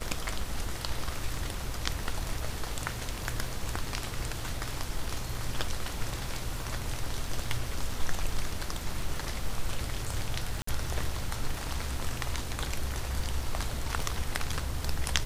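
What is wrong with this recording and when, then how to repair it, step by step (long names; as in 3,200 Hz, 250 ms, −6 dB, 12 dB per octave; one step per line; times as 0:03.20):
surface crackle 24 per second −38 dBFS
0:10.62–0:10.67: drop-out 54 ms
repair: click removal
repair the gap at 0:10.62, 54 ms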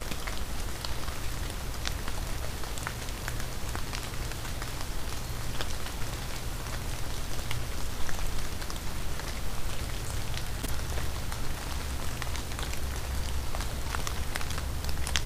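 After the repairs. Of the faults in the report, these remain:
none of them is left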